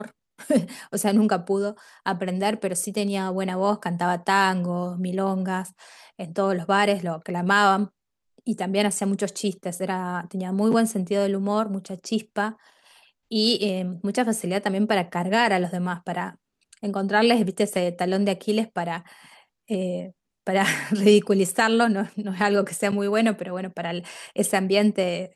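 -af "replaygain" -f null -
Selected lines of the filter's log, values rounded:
track_gain = +3.4 dB
track_peak = 0.394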